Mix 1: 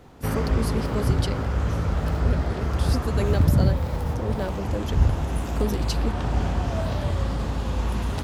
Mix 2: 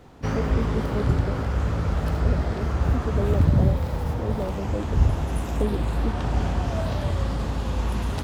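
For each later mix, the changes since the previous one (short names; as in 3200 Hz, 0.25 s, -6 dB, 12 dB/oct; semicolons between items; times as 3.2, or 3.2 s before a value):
speech: add inverse Chebyshev low-pass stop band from 1700 Hz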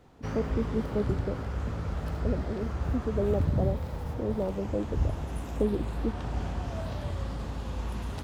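background -8.5 dB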